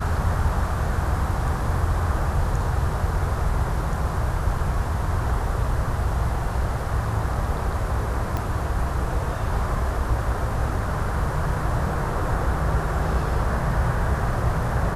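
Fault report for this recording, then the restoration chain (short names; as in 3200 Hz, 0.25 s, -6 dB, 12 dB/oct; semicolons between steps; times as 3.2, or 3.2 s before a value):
8.37 pop -14 dBFS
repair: de-click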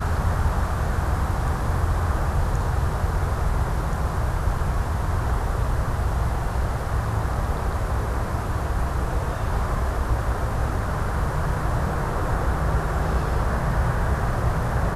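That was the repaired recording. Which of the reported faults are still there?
none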